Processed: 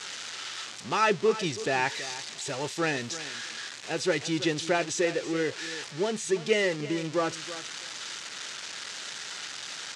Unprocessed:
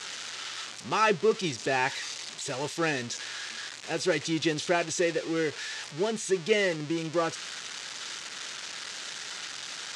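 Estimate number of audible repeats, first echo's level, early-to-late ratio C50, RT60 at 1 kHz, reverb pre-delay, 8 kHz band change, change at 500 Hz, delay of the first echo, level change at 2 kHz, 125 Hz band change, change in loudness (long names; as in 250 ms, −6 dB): 2, −14.5 dB, no reverb audible, no reverb audible, no reverb audible, 0.0 dB, 0.0 dB, 327 ms, 0.0 dB, 0.0 dB, 0.0 dB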